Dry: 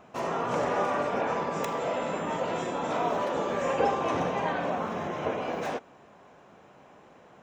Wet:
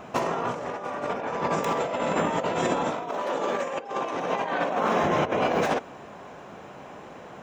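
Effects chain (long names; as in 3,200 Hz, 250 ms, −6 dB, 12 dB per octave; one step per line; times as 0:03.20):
0:03.09–0:05.04: Bessel high-pass filter 270 Hz, order 2
compressor whose output falls as the input rises −33 dBFS, ratio −0.5
level +7 dB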